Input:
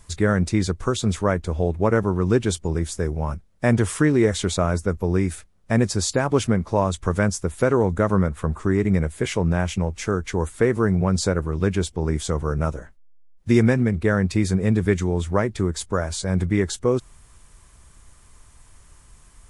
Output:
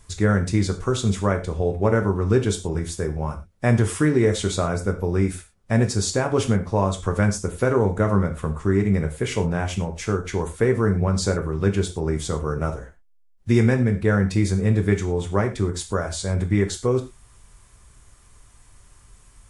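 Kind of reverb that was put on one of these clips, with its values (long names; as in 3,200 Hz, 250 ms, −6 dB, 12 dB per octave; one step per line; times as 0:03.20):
reverb whose tail is shaped and stops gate 140 ms falling, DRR 4.5 dB
level −2 dB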